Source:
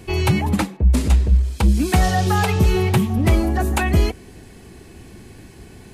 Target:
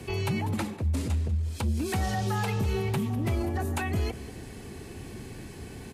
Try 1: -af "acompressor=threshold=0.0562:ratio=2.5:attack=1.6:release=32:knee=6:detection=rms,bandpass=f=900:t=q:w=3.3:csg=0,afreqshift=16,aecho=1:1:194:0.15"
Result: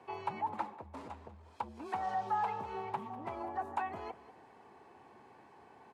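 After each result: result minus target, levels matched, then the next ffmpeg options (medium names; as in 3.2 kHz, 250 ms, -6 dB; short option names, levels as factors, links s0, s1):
1 kHz band +11.0 dB; compression: peak gain reduction -4 dB
-af "acompressor=threshold=0.0562:ratio=2.5:attack=1.6:release=32:knee=6:detection=rms,afreqshift=16,aecho=1:1:194:0.15"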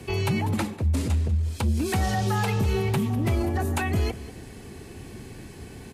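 compression: peak gain reduction -4 dB
-af "acompressor=threshold=0.0266:ratio=2.5:attack=1.6:release=32:knee=6:detection=rms,afreqshift=16,aecho=1:1:194:0.15"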